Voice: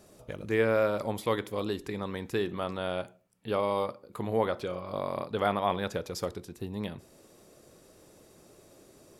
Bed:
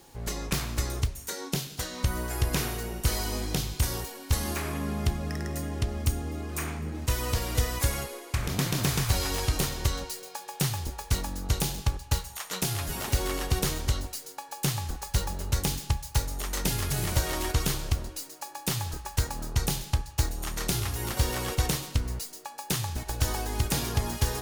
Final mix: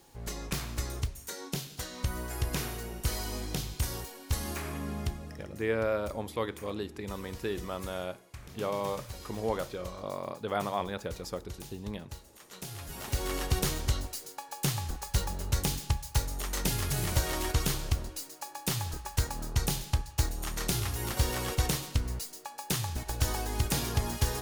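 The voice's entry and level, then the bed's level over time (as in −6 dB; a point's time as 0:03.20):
5.10 s, −4.0 dB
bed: 0:05.00 −5 dB
0:05.55 −17.5 dB
0:12.36 −17.5 dB
0:13.37 −2 dB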